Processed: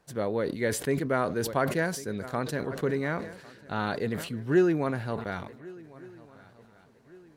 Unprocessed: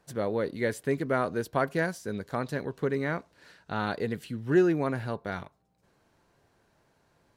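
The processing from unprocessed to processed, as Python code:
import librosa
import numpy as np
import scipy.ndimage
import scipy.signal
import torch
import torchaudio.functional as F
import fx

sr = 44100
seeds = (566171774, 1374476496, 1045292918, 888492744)

p1 = x + fx.echo_swing(x, sr, ms=1465, ratio=3, feedback_pct=38, wet_db=-22.0, dry=0)
y = fx.sustainer(p1, sr, db_per_s=76.0)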